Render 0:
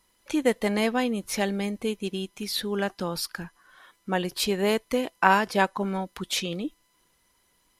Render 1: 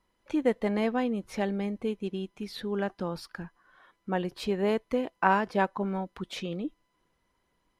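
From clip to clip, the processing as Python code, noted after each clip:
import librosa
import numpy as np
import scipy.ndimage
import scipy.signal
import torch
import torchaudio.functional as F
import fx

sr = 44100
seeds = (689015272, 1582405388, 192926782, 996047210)

y = fx.lowpass(x, sr, hz=1300.0, slope=6)
y = y * librosa.db_to_amplitude(-2.0)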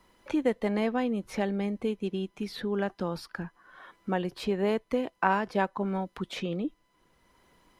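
y = fx.band_squash(x, sr, depth_pct=40)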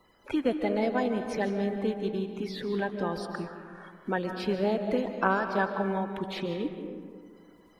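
y = fx.spec_quant(x, sr, step_db=30)
y = fx.rev_freeverb(y, sr, rt60_s=2.0, hf_ratio=0.4, predelay_ms=105, drr_db=6.0)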